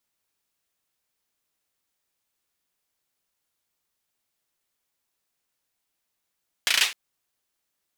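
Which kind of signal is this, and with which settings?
hand clap length 0.26 s, bursts 5, apart 35 ms, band 2.7 kHz, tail 0.29 s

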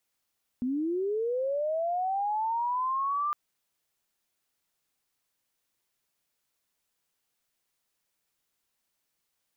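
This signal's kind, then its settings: sweep linear 240 Hz -> 1.2 kHz -26.5 dBFS -> -26 dBFS 2.71 s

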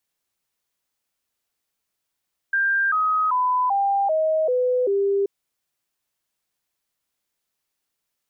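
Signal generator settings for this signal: stepped sine 1.59 kHz down, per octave 3, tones 7, 0.39 s, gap 0.00 s -17.5 dBFS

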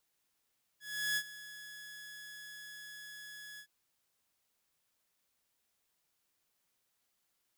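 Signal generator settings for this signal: ADSR saw 1.69 kHz, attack 365 ms, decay 62 ms, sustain -17 dB, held 2.79 s, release 76 ms -27.5 dBFS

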